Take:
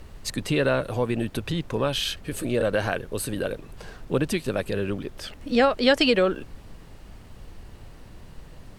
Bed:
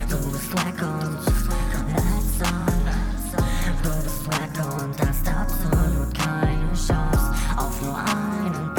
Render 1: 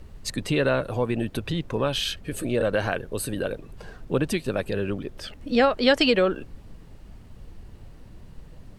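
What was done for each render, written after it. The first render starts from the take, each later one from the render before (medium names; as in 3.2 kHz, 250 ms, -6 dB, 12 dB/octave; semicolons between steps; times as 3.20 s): noise reduction 6 dB, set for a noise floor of -46 dBFS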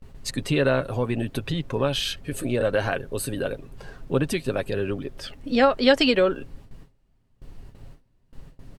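gate with hold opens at -34 dBFS; comb 7.4 ms, depth 33%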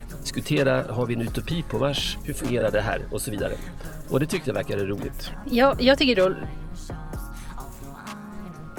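add bed -14 dB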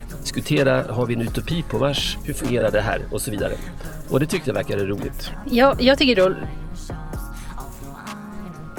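trim +3.5 dB; peak limiter -2 dBFS, peak gain reduction 2.5 dB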